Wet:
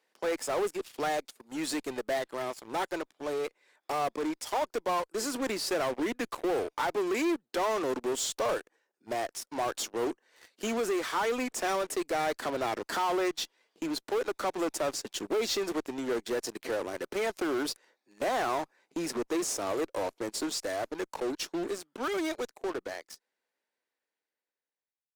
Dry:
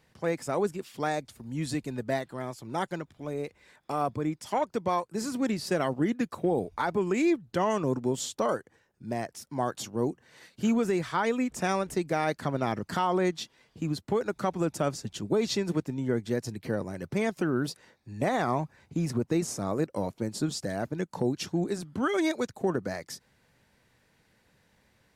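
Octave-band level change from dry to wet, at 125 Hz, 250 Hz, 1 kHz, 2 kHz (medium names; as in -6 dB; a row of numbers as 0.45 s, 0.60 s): -17.5 dB, -5.5 dB, -1.0 dB, 0.0 dB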